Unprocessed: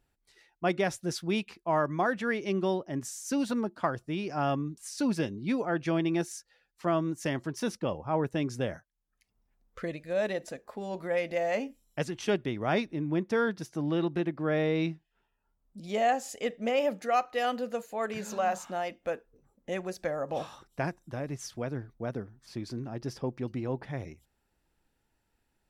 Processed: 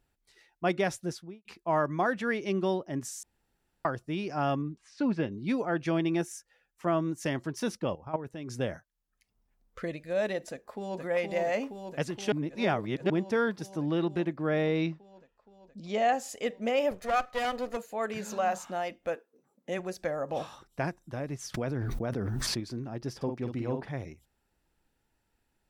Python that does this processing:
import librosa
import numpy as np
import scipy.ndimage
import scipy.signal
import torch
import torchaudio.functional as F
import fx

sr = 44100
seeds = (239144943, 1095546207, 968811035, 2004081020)

y = fx.studio_fade_out(x, sr, start_s=0.96, length_s=0.49)
y = fx.lowpass(y, sr, hz=2600.0, slope=12, at=(4.62, 5.32))
y = fx.peak_eq(y, sr, hz=4300.0, db=-9.5, octaves=0.51, at=(6.2, 7.0))
y = fx.level_steps(y, sr, step_db=13, at=(7.94, 8.48), fade=0.02)
y = fx.echo_throw(y, sr, start_s=10.5, length_s=0.5, ms=470, feedback_pct=80, wet_db=-3.5)
y = fx.lowpass(y, sr, hz=6700.0, slope=24, at=(14.81, 16.13))
y = fx.lower_of_two(y, sr, delay_ms=1.6, at=(16.91, 17.77))
y = fx.highpass(y, sr, hz=fx.line((19.14, 290.0), (19.78, 110.0)), slope=24, at=(19.14, 19.78), fade=0.02)
y = fx.env_flatten(y, sr, amount_pct=100, at=(21.54, 22.6))
y = fx.doubler(y, sr, ms=50.0, db=-5.5, at=(23.16, 23.89))
y = fx.edit(y, sr, fx.room_tone_fill(start_s=3.23, length_s=0.62),
    fx.reverse_span(start_s=12.32, length_s=0.78), tone=tone)